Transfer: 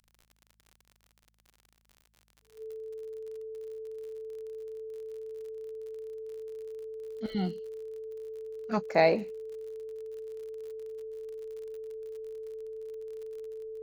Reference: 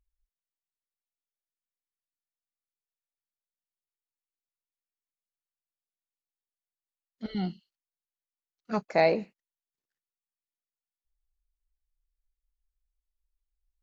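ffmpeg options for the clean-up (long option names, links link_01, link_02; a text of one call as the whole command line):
ffmpeg -i in.wav -af "adeclick=threshold=4,bandreject=frequency=54:width_type=h:width=4,bandreject=frequency=108:width_type=h:width=4,bandreject=frequency=162:width_type=h:width=4,bandreject=frequency=216:width_type=h:width=4,bandreject=frequency=440:width=30" out.wav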